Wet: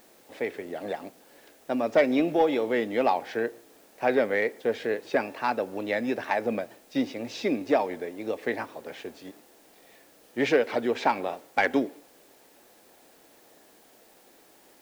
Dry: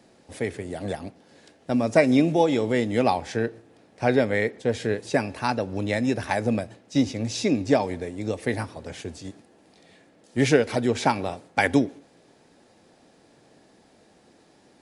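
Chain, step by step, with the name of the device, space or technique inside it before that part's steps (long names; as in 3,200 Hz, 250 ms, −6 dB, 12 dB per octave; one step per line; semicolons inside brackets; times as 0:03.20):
tape answering machine (band-pass filter 330–3,200 Hz; soft clipping −11 dBFS, distortion −20 dB; tape wow and flutter; white noise bed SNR 31 dB)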